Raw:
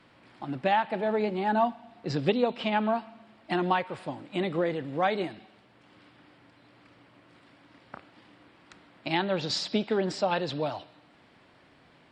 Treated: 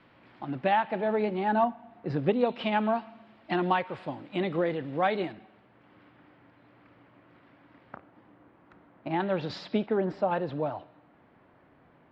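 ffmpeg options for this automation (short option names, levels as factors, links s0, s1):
-af "asetnsamples=n=441:p=0,asendcmd='1.64 lowpass f 1900;2.41 lowpass f 3800;5.32 lowpass f 2100;7.96 lowpass f 1300;9.2 lowpass f 2300;9.86 lowpass f 1500',lowpass=3200"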